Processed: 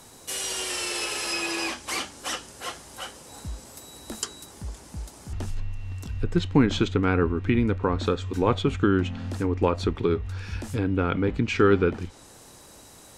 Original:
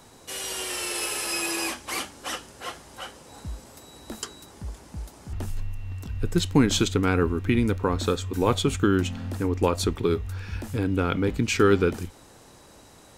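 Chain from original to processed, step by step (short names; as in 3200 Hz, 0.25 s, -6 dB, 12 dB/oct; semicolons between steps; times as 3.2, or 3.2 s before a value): treble ducked by the level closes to 2500 Hz, closed at -21 dBFS; high shelf 6000 Hz +9.5 dB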